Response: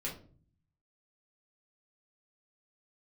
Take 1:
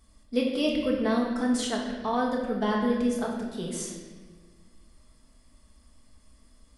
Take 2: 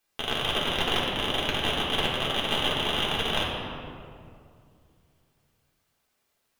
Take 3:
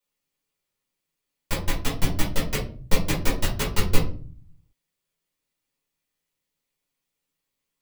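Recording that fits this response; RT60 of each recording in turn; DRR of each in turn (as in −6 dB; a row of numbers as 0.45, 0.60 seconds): 3; 1.4, 2.3, 0.45 seconds; −2.0, −5.5, −5.5 decibels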